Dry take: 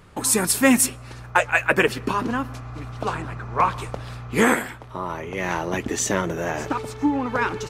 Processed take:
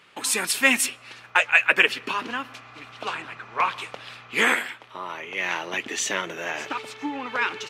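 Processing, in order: Bessel high-pass 300 Hz, order 2; peaking EQ 2.8 kHz +14.5 dB 1.7 oct; trim -7.5 dB

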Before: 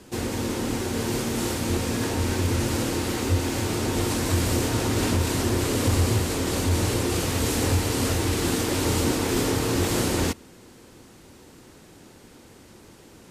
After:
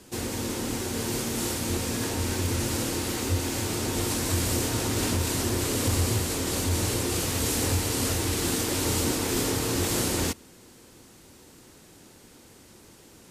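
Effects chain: treble shelf 4.1 kHz +7 dB; trim -4 dB

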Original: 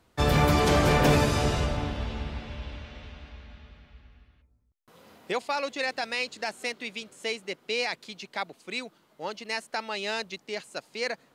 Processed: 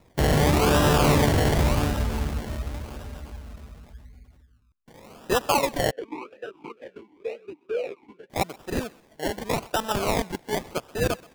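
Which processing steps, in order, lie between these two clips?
spectral gate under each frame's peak -25 dB strong; peak limiter -18.5 dBFS, peak gain reduction 7 dB; decimation with a swept rate 28×, swing 60% 0.89 Hz; thinning echo 128 ms, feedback 30%, high-pass 490 Hz, level -22 dB; 5.91–8.30 s: talking filter e-u 2.1 Hz; trim +7 dB

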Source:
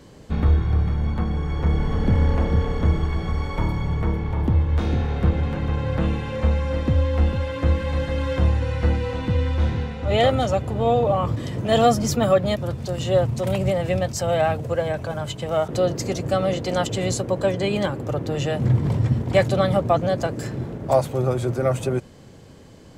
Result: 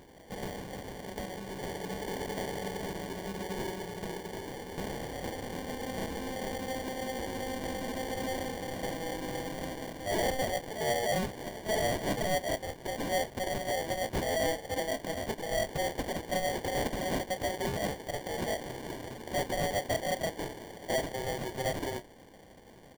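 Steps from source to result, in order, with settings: high-pass 780 Hz 12 dB/octave; treble shelf 6.9 kHz +9 dB; sample-rate reducer 1.3 kHz, jitter 0%; saturation -26.5 dBFS, distortion -8 dB; doubling 30 ms -13 dB

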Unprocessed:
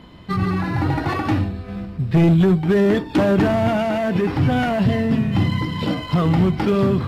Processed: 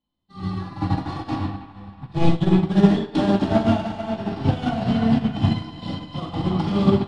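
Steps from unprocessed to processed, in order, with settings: graphic EQ 125/500/1000/4000 Hz -3/-5/+10/+5 dB; resampled via 22.05 kHz; high-order bell 1.5 kHz -9.5 dB; on a send: feedback echo behind a band-pass 322 ms, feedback 66%, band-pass 1.5 kHz, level -4.5 dB; on the sum: simulated room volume 900 m³, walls mixed, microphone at 2.3 m; upward expansion 2.5:1, over -34 dBFS; trim -1.5 dB

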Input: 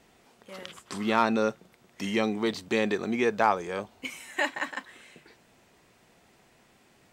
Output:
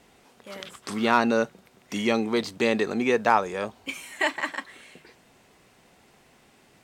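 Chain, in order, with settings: speed mistake 24 fps film run at 25 fps; trim +3 dB

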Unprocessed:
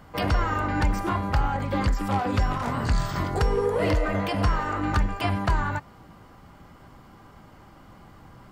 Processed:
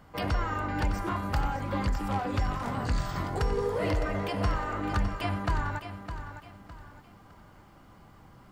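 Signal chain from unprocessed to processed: 1.16–1.56 s: treble shelf 6.7 kHz +10 dB; bit-crushed delay 609 ms, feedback 35%, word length 10-bit, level -10 dB; trim -5.5 dB

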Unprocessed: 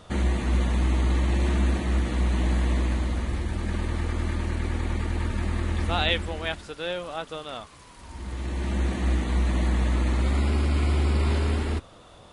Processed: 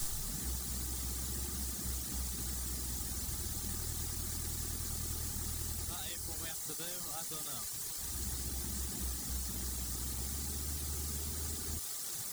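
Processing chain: tape start-up on the opening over 0.45 s; compression 5:1, threshold -33 dBFS, peak gain reduction 13 dB; word length cut 6-bit, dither triangular; graphic EQ 125/500/1000/2000/4000/8000 Hz +6/-11/-8/+4/+3/+7 dB; reverb removal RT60 1.2 s; gain riding; companded quantiser 4-bit; peaking EQ 2.5 kHz -12.5 dB 1.1 oct; small resonant body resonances 410/810/1200 Hz, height 7 dB, ringing for 25 ms; trim -5 dB

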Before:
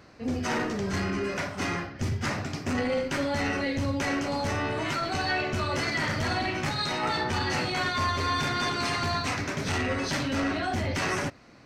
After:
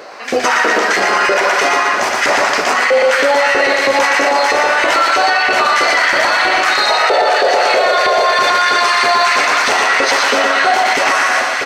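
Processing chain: on a send: echo that smears into a reverb 630 ms, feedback 64%, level -12 dB; on the sum: painted sound noise, 6.90–8.35 s, 370–760 Hz -26 dBFS; LFO high-pass saw up 3.1 Hz 450–2000 Hz; feedback delay 118 ms, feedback 41%, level -3 dB; loudness maximiser +22 dB; trim -3 dB

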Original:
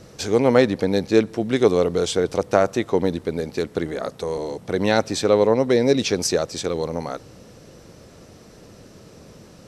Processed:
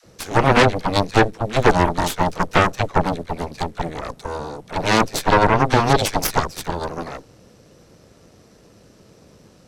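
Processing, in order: phase dispersion lows, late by 56 ms, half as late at 430 Hz; Chebyshev shaper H 6 -6 dB, 7 -12 dB, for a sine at -3.5 dBFS; trim -2 dB

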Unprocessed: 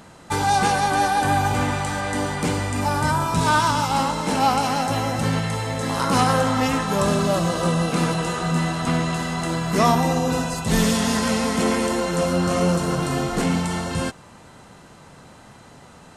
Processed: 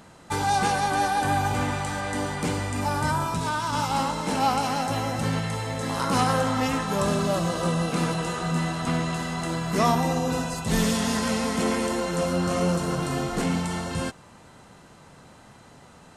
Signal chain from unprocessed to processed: 3.27–3.73 s: compression 5:1, threshold -20 dBFS, peak gain reduction 6 dB; trim -4 dB

